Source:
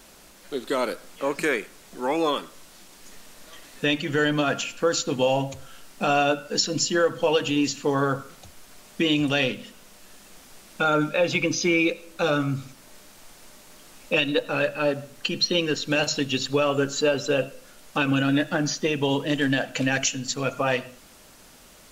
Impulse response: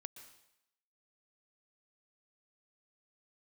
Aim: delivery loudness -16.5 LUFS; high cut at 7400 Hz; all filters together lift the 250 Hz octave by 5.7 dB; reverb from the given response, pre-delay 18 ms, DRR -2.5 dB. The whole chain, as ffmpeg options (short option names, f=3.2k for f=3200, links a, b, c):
-filter_complex "[0:a]lowpass=7.4k,equalizer=f=250:t=o:g=7,asplit=2[a][b];[1:a]atrim=start_sample=2205,adelay=18[c];[b][c]afir=irnorm=-1:irlink=0,volume=7.5dB[d];[a][d]amix=inputs=2:normalize=0,volume=1dB"